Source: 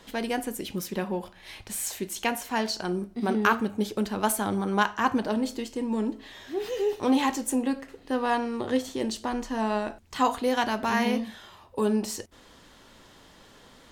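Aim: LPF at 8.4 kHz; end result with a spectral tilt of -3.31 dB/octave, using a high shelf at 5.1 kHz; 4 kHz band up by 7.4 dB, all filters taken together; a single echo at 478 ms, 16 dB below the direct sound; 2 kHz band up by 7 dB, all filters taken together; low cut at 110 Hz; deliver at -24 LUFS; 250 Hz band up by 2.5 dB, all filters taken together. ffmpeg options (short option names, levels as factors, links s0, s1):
-af "highpass=110,lowpass=8400,equalizer=f=250:t=o:g=3,equalizer=f=2000:t=o:g=7.5,equalizer=f=4000:t=o:g=4,highshelf=f=5100:g=7,aecho=1:1:478:0.158,volume=1.12"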